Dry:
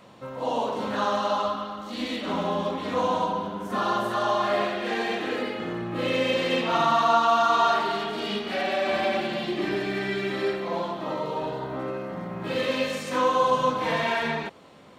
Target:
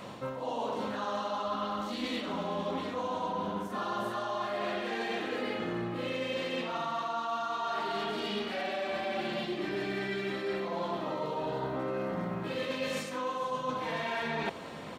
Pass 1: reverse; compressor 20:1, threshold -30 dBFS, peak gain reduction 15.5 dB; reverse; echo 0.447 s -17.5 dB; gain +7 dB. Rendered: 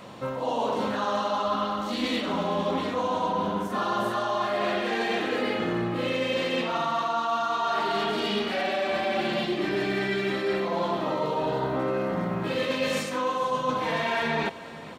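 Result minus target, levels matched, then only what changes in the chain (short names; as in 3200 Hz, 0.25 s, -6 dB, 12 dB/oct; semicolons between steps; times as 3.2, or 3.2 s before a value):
compressor: peak gain reduction -7 dB
change: compressor 20:1, threshold -37.5 dBFS, peak gain reduction 22.5 dB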